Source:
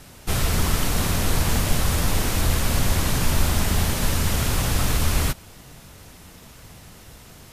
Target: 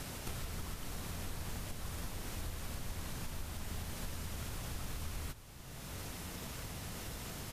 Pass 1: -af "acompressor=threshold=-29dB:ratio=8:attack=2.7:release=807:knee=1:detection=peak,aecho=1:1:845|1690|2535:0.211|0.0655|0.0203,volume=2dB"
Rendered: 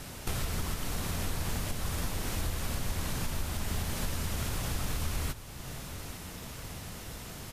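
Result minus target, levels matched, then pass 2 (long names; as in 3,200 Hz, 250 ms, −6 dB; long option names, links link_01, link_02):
downward compressor: peak gain reduction −9 dB
-af "acompressor=threshold=-39dB:ratio=8:attack=2.7:release=807:knee=1:detection=peak,aecho=1:1:845|1690|2535:0.211|0.0655|0.0203,volume=2dB"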